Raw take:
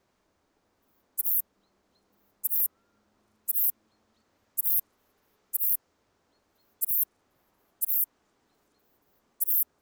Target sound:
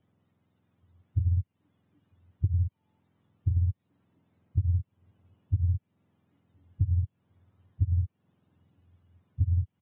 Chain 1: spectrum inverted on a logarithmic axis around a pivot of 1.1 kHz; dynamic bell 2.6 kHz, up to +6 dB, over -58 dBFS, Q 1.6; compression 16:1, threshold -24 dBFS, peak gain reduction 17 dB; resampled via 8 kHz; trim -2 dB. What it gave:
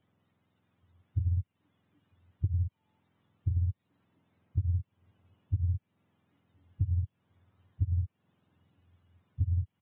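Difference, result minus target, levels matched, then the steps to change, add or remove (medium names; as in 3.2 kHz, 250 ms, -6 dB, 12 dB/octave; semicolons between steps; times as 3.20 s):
1 kHz band +4.0 dB
add after compression: tilt shelf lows +3.5 dB, about 730 Hz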